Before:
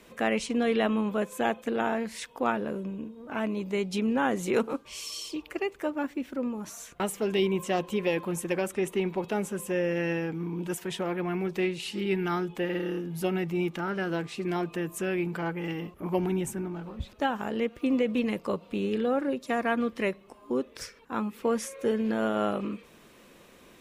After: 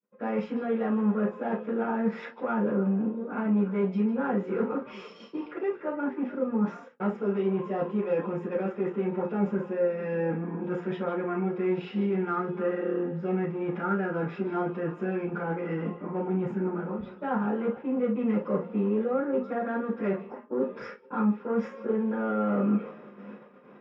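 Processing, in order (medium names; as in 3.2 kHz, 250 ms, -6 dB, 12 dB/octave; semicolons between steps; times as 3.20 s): reverse; compression 8:1, threshold -35 dBFS, peak gain reduction 14.5 dB; reverse; saturation -33.5 dBFS, distortion -17 dB; tape spacing loss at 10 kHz 41 dB; repeats whose band climbs or falls 150 ms, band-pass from 3.6 kHz, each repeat -1.4 oct, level -10.5 dB; gate -55 dBFS, range -45 dB; hum notches 60/120/180/240/300/360/420 Hz; reverberation, pre-delay 3 ms, DRR -12.5 dB; endings held to a fixed fall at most 370 dB/s; trim -6 dB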